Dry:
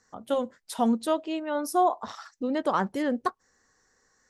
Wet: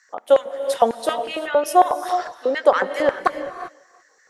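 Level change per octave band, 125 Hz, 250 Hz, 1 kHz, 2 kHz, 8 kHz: no reading, -3.5 dB, +8.5 dB, +11.5 dB, +6.0 dB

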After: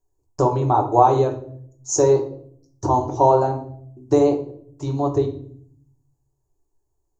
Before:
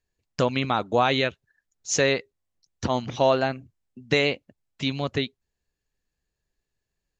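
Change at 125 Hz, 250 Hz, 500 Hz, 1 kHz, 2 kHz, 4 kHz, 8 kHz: +7.0 dB, +5.0 dB, +6.5 dB, +9.0 dB, under -15 dB, -13.5 dB, +3.0 dB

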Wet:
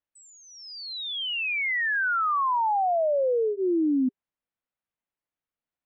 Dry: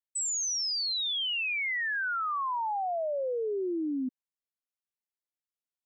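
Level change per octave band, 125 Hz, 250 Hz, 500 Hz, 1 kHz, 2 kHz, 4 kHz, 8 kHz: no reading, +8.0 dB, +7.0 dB, +7.0 dB, +4.5 dB, -2.0 dB, under -15 dB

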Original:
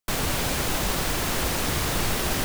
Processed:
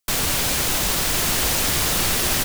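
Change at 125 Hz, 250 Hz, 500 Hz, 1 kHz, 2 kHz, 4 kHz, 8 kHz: +0.5 dB, +0.5 dB, +1.0 dB, +2.0 dB, +4.0 dB, +6.5 dB, +8.5 dB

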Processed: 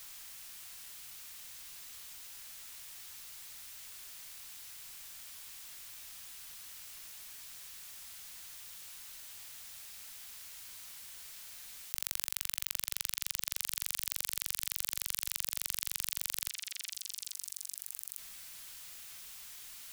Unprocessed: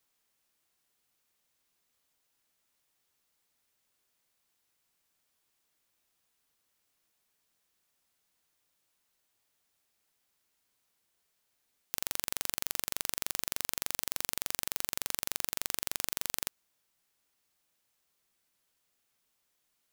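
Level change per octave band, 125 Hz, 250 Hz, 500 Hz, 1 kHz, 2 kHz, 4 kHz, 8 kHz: -6.0 dB, -11.5 dB, -11.5 dB, -6.5 dB, -2.0 dB, 0.0 dB, +0.5 dB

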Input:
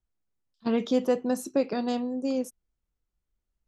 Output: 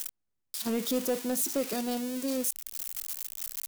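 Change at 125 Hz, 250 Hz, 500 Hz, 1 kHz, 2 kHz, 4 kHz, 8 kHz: no reading, -4.5 dB, -5.0 dB, -4.5 dB, -0.5 dB, +4.0 dB, +12.5 dB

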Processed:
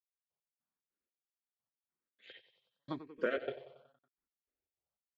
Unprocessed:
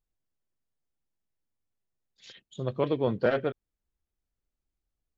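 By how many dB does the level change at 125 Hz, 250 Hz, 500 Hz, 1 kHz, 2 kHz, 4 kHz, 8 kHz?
-21.0 dB, -12.5 dB, -11.5 dB, -11.0 dB, -5.5 dB, -8.5 dB, no reading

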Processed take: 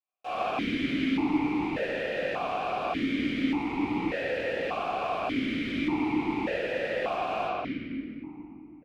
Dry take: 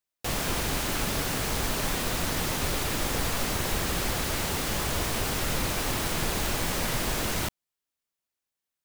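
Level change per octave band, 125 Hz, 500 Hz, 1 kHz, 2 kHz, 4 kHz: -9.5 dB, +3.0 dB, +2.0 dB, -1.0 dB, -8.5 dB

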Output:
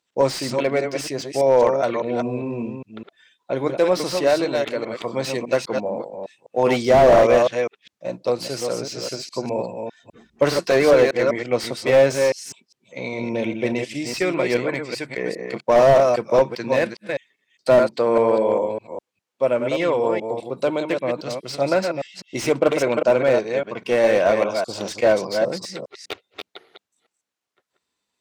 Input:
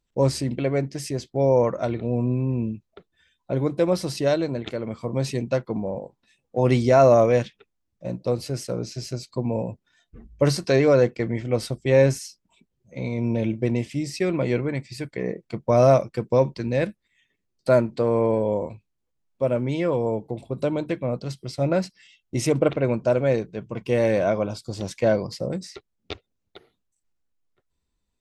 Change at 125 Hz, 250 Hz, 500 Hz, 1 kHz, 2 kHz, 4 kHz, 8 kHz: -7.5 dB, -0.5 dB, +4.0 dB, +5.5 dB, +7.5 dB, +6.5 dB, +4.0 dB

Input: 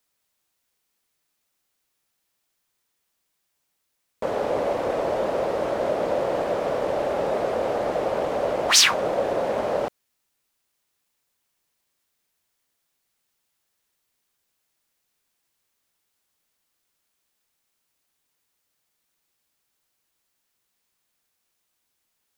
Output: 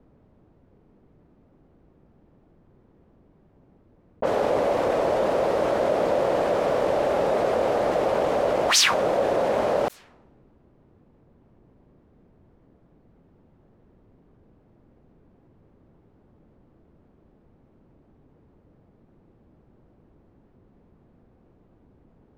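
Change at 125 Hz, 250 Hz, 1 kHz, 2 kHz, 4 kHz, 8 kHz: +2.5 dB, +2.0 dB, +2.0 dB, -0.5 dB, -2.5 dB, -3.0 dB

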